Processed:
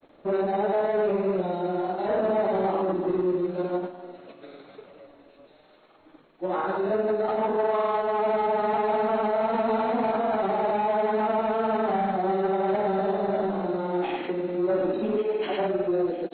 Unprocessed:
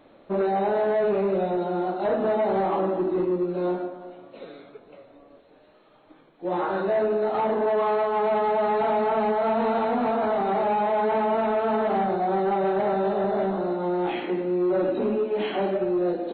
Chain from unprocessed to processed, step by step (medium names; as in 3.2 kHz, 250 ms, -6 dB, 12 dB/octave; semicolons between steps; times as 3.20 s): feedback echo behind a high-pass 1046 ms, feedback 46%, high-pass 2.7 kHz, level -7.5 dB; granulator, pitch spread up and down by 0 st